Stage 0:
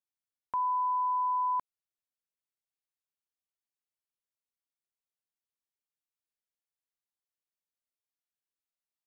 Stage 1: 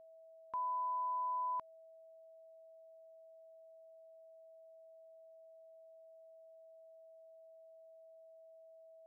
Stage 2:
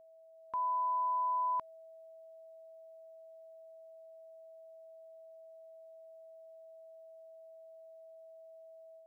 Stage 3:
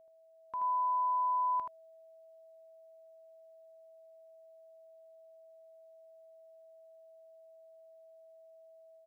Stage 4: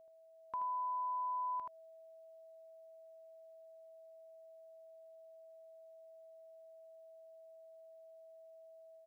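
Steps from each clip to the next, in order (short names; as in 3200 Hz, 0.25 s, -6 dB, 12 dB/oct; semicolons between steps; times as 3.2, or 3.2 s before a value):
whine 650 Hz -48 dBFS; gain -8.5 dB
AGC gain up to 5 dB
echo 79 ms -5 dB; gain -2 dB
compressor, threshold -37 dBFS, peak gain reduction 7.5 dB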